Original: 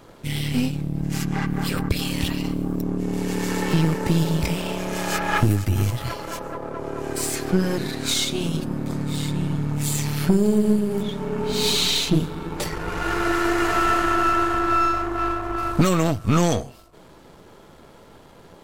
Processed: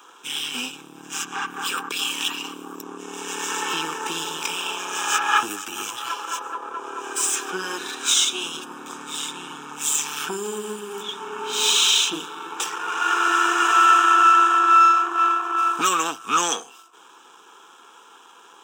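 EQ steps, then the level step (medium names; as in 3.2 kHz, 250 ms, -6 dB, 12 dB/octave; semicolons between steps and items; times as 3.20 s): Bessel high-pass 650 Hz, order 4; static phaser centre 3 kHz, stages 8; +8.0 dB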